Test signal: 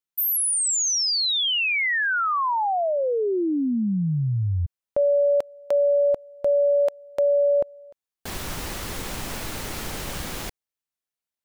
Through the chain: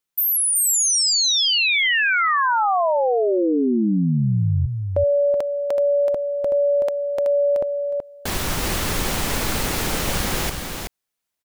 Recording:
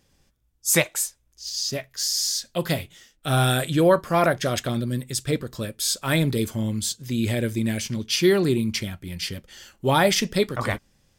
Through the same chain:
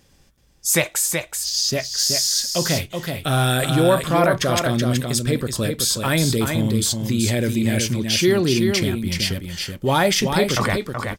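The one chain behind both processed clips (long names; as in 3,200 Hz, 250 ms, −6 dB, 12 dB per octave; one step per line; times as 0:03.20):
in parallel at −2 dB: compressor whose output falls as the input rises −28 dBFS, ratio −1
on the sum: single-tap delay 377 ms −5.5 dB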